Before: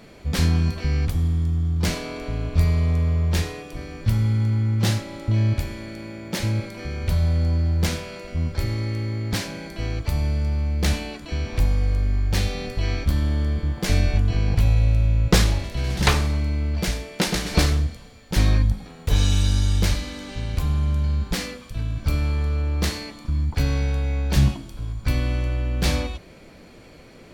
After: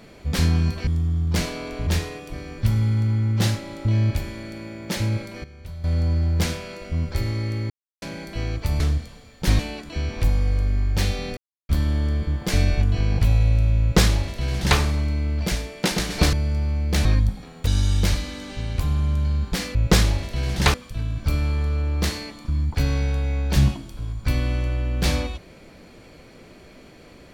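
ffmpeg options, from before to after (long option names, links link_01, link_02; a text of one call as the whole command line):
ffmpeg -i in.wav -filter_complex "[0:a]asplit=16[link_01][link_02][link_03][link_04][link_05][link_06][link_07][link_08][link_09][link_10][link_11][link_12][link_13][link_14][link_15][link_16];[link_01]atrim=end=0.872[link_17];[link_02]atrim=start=1.358:end=2.362[link_18];[link_03]atrim=start=3.298:end=6.87,asetpts=PTS-STARTPTS,afade=type=out:start_time=3.262:duration=0.31:curve=log:silence=0.177828[link_19];[link_04]atrim=start=6.87:end=7.27,asetpts=PTS-STARTPTS,volume=-15dB[link_20];[link_05]atrim=start=7.27:end=9.13,asetpts=PTS-STARTPTS,afade=type=in:duration=0.31:curve=log:silence=0.177828,afade=type=out:start_time=1.856:duration=0.004:curve=hsin[link_21];[link_06]atrim=start=9.13:end=9.45,asetpts=PTS-STARTPTS,volume=0[link_22];[link_07]atrim=start=9.45:end=10.232,asetpts=PTS-STARTPTS,afade=type=in:duration=0.004:curve=hsin[link_23];[link_08]atrim=start=17.688:end=18.482[link_24];[link_09]atrim=start=10.948:end=12.73,asetpts=PTS-STARTPTS,afade=type=out:start_time=1.778:duration=0.004:curve=hsin[link_25];[link_10]atrim=start=12.73:end=13.05,asetpts=PTS-STARTPTS,volume=0[link_26];[link_11]atrim=start=13.05:end=17.692,asetpts=PTS-STARTPTS,afade=type=in:duration=0.004:curve=hsin[link_27];[link_12]atrim=start=10.228:end=10.952[link_28];[link_13]atrim=start=18.478:end=19.102[link_29];[link_14]atrim=start=19.458:end=21.542[link_30];[link_15]atrim=start=15.158:end=16.152[link_31];[link_16]atrim=start=21.538[link_32];[link_17][link_18]acrossfade=duration=0.004:curve1=hsin:curve2=hsin[link_33];[link_19][link_20][link_21][link_22][link_23]concat=n=5:v=0:a=1[link_34];[link_33][link_34]acrossfade=duration=0.004:curve1=hsin:curve2=hsin[link_35];[link_35][link_24]acrossfade=duration=0.004:curve1=hsin:curve2=hsin[link_36];[link_25][link_26][link_27]concat=n=3:v=0:a=1[link_37];[link_36][link_37]acrossfade=duration=0.004:curve1=hsin:curve2=hsin[link_38];[link_38][link_28]acrossfade=duration=0.004:curve1=hsin:curve2=hsin[link_39];[link_39][link_29]acrossfade=duration=0.004:curve1=hsin:curve2=hsin[link_40];[link_40][link_30]acrossfade=duration=0.004:curve1=hsin:curve2=hsin[link_41];[link_41][link_31]acrossfade=duration=0.004:curve1=hsin:curve2=hsin[link_42];[link_42][link_32]acrossfade=duration=0.004:curve1=hsin:curve2=hsin" out.wav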